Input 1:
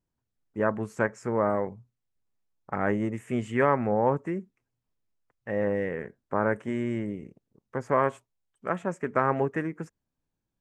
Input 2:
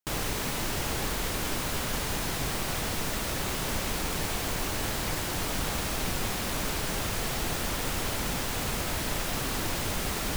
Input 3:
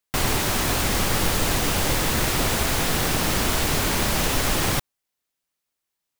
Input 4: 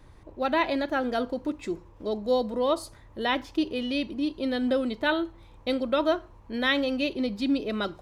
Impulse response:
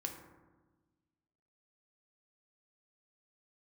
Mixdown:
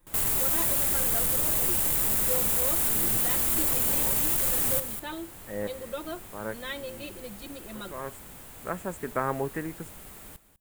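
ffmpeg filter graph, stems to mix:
-filter_complex "[0:a]volume=-4dB[link_01];[1:a]highshelf=frequency=5600:gain=-10.5,volume=-17dB,asplit=2[link_02][link_03];[link_03]volume=-15dB[link_04];[2:a]asoftclip=type=tanh:threshold=-18dB,volume=-10.5dB,asplit=2[link_05][link_06];[link_06]volume=-10dB[link_07];[3:a]aecho=1:1:5.7:0.99,volume=-14.5dB,asplit=2[link_08][link_09];[link_09]apad=whole_len=467833[link_10];[link_01][link_10]sidechaincompress=threshold=-53dB:ratio=8:attack=16:release=310[link_11];[link_04][link_07]amix=inputs=2:normalize=0,aecho=0:1:198:1[link_12];[link_11][link_02][link_05][link_08][link_12]amix=inputs=5:normalize=0,aexciter=amount=6.9:drive=2.4:freq=7500"

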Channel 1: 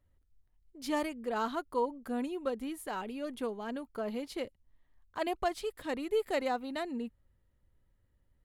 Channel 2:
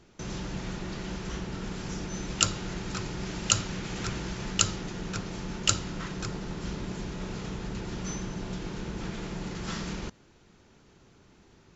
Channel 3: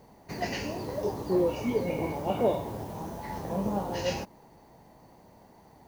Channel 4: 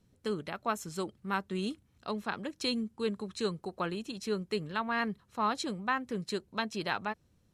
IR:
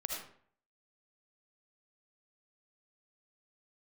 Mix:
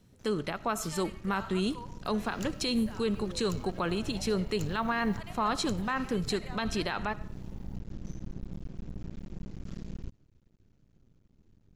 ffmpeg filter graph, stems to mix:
-filter_complex "[0:a]highpass=1100,volume=-5dB,asplit=3[link_01][link_02][link_03];[link_02]volume=-9.5dB[link_04];[1:a]asubboost=boost=11.5:cutoff=190,aeval=exprs='max(val(0),0)':channel_layout=same,volume=-17dB[link_05];[2:a]adelay=1900,volume=-5.5dB[link_06];[3:a]acontrast=36,volume=0.5dB,asplit=2[link_07][link_08];[link_08]volume=-19dB[link_09];[link_03]apad=whole_len=342835[link_10];[link_06][link_10]sidechaincompress=threshold=-54dB:ratio=8:attack=16:release=805[link_11];[link_01][link_11]amix=inputs=2:normalize=0,acompressor=threshold=-50dB:ratio=2,volume=0dB[link_12];[link_05][link_07]amix=inputs=2:normalize=0,alimiter=limit=-22dB:level=0:latency=1:release=59,volume=0dB[link_13];[4:a]atrim=start_sample=2205[link_14];[link_04][link_09]amix=inputs=2:normalize=0[link_15];[link_15][link_14]afir=irnorm=-1:irlink=0[link_16];[link_12][link_13][link_16]amix=inputs=3:normalize=0"

